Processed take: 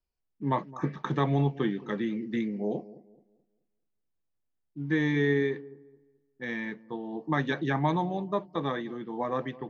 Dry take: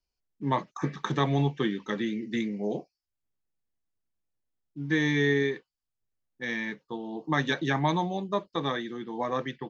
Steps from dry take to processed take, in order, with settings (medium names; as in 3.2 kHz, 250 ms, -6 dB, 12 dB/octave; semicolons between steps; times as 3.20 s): low-pass 1.7 kHz 6 dB/octave; feedback echo behind a low-pass 215 ms, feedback 31%, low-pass 840 Hz, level -18 dB